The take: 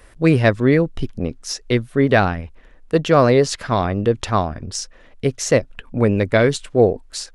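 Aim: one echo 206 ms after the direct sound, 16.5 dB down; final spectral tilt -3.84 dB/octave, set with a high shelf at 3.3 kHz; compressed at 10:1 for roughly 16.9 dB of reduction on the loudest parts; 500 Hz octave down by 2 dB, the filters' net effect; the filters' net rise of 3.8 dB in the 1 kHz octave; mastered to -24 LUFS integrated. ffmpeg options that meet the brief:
-af "equalizer=f=500:t=o:g=-4,equalizer=f=1000:t=o:g=5.5,highshelf=f=3300:g=9,acompressor=threshold=0.0501:ratio=10,aecho=1:1:206:0.15,volume=2.24"

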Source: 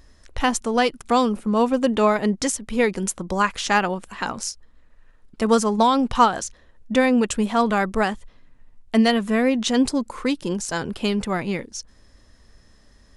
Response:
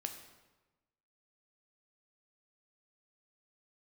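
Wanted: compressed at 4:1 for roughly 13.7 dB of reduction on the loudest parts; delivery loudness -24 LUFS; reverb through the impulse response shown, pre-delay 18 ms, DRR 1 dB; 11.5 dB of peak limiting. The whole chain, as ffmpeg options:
-filter_complex "[0:a]acompressor=threshold=0.0355:ratio=4,alimiter=level_in=1.06:limit=0.0631:level=0:latency=1,volume=0.944,asplit=2[s0][s1];[1:a]atrim=start_sample=2205,adelay=18[s2];[s1][s2]afir=irnorm=-1:irlink=0,volume=1[s3];[s0][s3]amix=inputs=2:normalize=0,volume=2.51"

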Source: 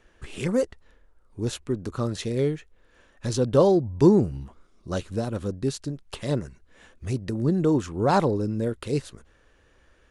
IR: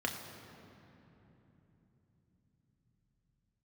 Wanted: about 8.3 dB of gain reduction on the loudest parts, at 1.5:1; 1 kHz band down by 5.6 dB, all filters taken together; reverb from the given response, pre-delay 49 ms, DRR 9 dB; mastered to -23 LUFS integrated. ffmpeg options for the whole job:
-filter_complex "[0:a]equalizer=f=1000:t=o:g=-7.5,acompressor=threshold=0.0158:ratio=1.5,asplit=2[s0][s1];[1:a]atrim=start_sample=2205,adelay=49[s2];[s1][s2]afir=irnorm=-1:irlink=0,volume=0.2[s3];[s0][s3]amix=inputs=2:normalize=0,volume=2.82"

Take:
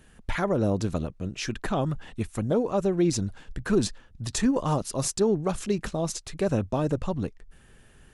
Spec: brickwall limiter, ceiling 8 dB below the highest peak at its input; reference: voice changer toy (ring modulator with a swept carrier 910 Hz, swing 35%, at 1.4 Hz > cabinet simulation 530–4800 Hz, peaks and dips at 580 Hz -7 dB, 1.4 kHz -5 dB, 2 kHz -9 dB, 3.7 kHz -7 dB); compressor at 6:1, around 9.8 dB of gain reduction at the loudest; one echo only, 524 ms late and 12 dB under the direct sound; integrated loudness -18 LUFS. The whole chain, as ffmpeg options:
-af "acompressor=threshold=0.0355:ratio=6,alimiter=level_in=1.19:limit=0.0631:level=0:latency=1,volume=0.841,aecho=1:1:524:0.251,aeval=exprs='val(0)*sin(2*PI*910*n/s+910*0.35/1.4*sin(2*PI*1.4*n/s))':c=same,highpass=530,equalizer=f=580:t=q:w=4:g=-7,equalizer=f=1400:t=q:w=4:g=-5,equalizer=f=2000:t=q:w=4:g=-9,equalizer=f=3700:t=q:w=4:g=-7,lowpass=f=4800:w=0.5412,lowpass=f=4800:w=1.3066,volume=16.8"

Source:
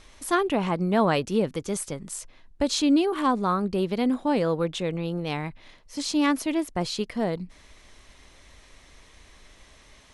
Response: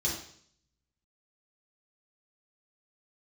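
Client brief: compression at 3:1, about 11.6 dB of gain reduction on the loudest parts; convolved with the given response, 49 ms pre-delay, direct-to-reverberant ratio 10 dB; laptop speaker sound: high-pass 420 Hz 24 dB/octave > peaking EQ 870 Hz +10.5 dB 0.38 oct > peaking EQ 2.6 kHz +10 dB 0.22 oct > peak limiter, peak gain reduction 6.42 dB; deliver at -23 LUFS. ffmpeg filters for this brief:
-filter_complex "[0:a]acompressor=threshold=0.0224:ratio=3,asplit=2[s0][s1];[1:a]atrim=start_sample=2205,adelay=49[s2];[s1][s2]afir=irnorm=-1:irlink=0,volume=0.158[s3];[s0][s3]amix=inputs=2:normalize=0,highpass=f=420:w=0.5412,highpass=f=420:w=1.3066,equalizer=f=870:t=o:w=0.38:g=10.5,equalizer=f=2600:t=o:w=0.22:g=10,volume=5.01,alimiter=limit=0.282:level=0:latency=1"

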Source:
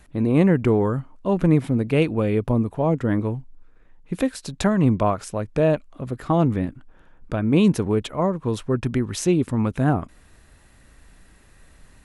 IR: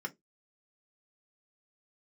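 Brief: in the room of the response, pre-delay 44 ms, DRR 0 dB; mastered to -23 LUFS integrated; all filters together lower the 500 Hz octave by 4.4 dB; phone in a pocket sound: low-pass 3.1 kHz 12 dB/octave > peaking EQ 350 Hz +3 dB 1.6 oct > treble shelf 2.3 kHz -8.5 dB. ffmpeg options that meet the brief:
-filter_complex "[0:a]equalizer=f=500:t=o:g=-8.5,asplit=2[s0][s1];[1:a]atrim=start_sample=2205,adelay=44[s2];[s1][s2]afir=irnorm=-1:irlink=0,volume=0.841[s3];[s0][s3]amix=inputs=2:normalize=0,lowpass=3100,equalizer=f=350:t=o:w=1.6:g=3,highshelf=f=2300:g=-8.5,volume=0.631"

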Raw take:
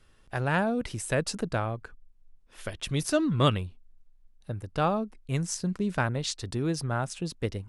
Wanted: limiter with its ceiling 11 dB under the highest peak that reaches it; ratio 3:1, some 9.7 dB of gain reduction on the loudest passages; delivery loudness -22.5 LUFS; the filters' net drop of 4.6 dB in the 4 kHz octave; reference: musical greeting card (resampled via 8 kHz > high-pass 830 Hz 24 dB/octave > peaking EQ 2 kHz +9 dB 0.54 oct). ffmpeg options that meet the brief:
-af "equalizer=f=4000:t=o:g=-7.5,acompressor=threshold=0.0251:ratio=3,alimiter=level_in=2.24:limit=0.0631:level=0:latency=1,volume=0.447,aresample=8000,aresample=44100,highpass=f=830:w=0.5412,highpass=f=830:w=1.3066,equalizer=f=2000:t=o:w=0.54:g=9,volume=17.8"

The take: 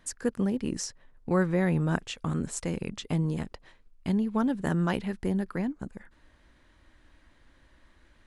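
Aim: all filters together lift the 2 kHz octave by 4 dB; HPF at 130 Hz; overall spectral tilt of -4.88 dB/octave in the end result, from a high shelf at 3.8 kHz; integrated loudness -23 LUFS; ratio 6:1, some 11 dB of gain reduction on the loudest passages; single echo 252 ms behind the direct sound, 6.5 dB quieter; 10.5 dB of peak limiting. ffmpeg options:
-af "highpass=130,equalizer=f=2000:t=o:g=3.5,highshelf=f=3800:g=7,acompressor=threshold=0.0251:ratio=6,alimiter=level_in=2:limit=0.0631:level=0:latency=1,volume=0.501,aecho=1:1:252:0.473,volume=6.68"

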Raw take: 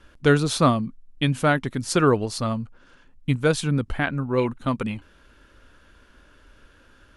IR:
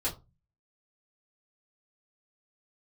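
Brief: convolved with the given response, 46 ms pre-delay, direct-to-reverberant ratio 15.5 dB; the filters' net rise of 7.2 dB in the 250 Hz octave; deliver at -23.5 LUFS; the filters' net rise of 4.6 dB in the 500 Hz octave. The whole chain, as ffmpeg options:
-filter_complex "[0:a]equalizer=f=250:t=o:g=8,equalizer=f=500:t=o:g=3,asplit=2[s0][s1];[1:a]atrim=start_sample=2205,adelay=46[s2];[s1][s2]afir=irnorm=-1:irlink=0,volume=0.0944[s3];[s0][s3]amix=inputs=2:normalize=0,volume=0.562"

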